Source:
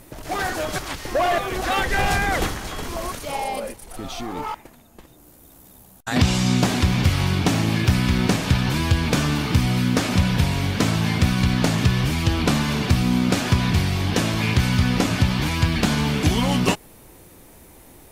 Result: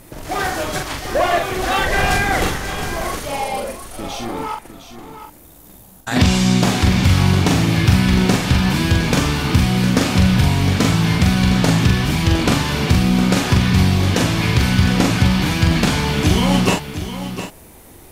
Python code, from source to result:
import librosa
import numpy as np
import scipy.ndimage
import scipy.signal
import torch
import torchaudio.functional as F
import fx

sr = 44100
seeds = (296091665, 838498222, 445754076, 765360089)

y = fx.doubler(x, sr, ms=43.0, db=-3.5)
y = y + 10.0 ** (-11.0 / 20.0) * np.pad(y, (int(709 * sr / 1000.0), 0))[:len(y)]
y = y * 10.0 ** (2.5 / 20.0)